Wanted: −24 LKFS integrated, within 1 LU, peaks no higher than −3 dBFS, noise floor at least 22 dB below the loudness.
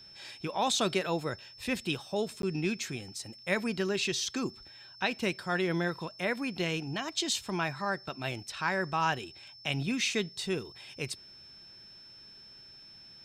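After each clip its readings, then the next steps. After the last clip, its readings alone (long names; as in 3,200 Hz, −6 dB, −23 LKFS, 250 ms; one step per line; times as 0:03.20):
number of dropouts 1; longest dropout 12 ms; interfering tone 5,300 Hz; level of the tone −50 dBFS; integrated loudness −32.5 LKFS; sample peak −14.0 dBFS; target loudness −24.0 LKFS
→ repair the gap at 0:02.42, 12 ms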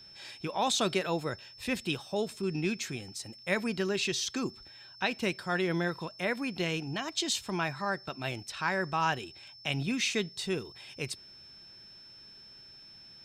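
number of dropouts 0; interfering tone 5,300 Hz; level of the tone −50 dBFS
→ notch filter 5,300 Hz, Q 30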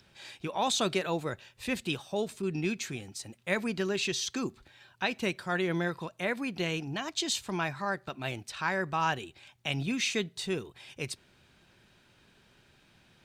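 interfering tone none found; integrated loudness −32.5 LKFS; sample peak −14.5 dBFS; target loudness −24.0 LKFS
→ level +8.5 dB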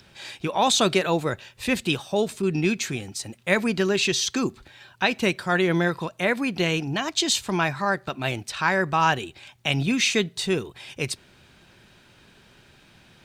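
integrated loudness −24.0 LKFS; sample peak −6.0 dBFS; background noise floor −56 dBFS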